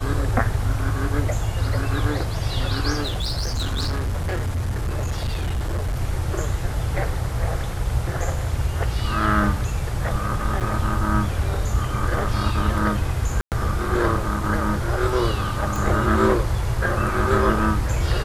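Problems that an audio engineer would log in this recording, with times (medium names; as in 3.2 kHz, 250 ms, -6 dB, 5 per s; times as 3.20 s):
3.01–5.96 s: clipped -20.5 dBFS
10.60–10.61 s: dropout 7.9 ms
13.41–13.52 s: dropout 108 ms
15.76 s: pop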